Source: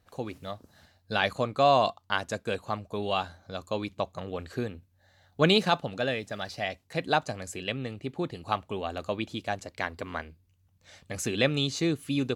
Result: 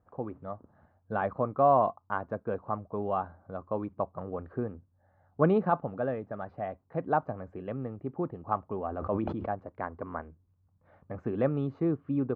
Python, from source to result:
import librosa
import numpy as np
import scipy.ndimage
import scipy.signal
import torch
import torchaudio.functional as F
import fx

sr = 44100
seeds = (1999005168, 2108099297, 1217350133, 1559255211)

y = scipy.signal.sosfilt(scipy.signal.cheby1(3, 1.0, 1200.0, 'lowpass', fs=sr, output='sos'), x)
y = fx.low_shelf(y, sr, hz=61.0, db=-7.0)
y = fx.sustainer(y, sr, db_per_s=27.0, at=(8.88, 9.51))